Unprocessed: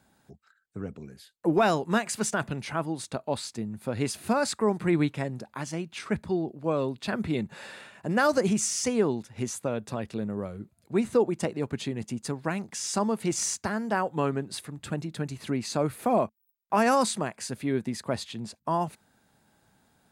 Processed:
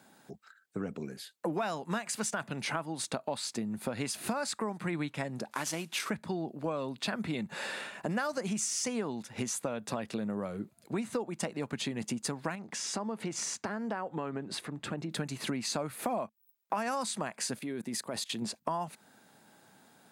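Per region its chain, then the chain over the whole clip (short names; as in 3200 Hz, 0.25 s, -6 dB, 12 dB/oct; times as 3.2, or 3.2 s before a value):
5.51–6.1 CVSD 64 kbps + tilt +1.5 dB/oct
12.55–15.11 LPF 2700 Hz 6 dB/oct + compressor 2:1, threshold -39 dBFS
17.59–18.42 high shelf 7200 Hz +10 dB + level quantiser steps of 20 dB
whole clip: HPF 190 Hz 12 dB/oct; dynamic EQ 380 Hz, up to -8 dB, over -41 dBFS, Q 1.7; compressor 6:1, threshold -37 dBFS; gain +6 dB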